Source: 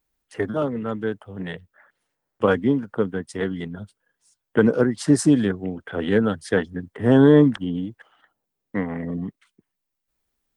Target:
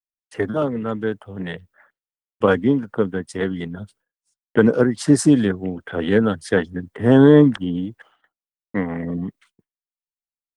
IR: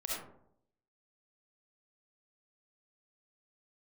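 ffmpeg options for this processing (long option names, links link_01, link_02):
-af "agate=range=-33dB:threshold=-51dB:ratio=3:detection=peak,volume=2.5dB"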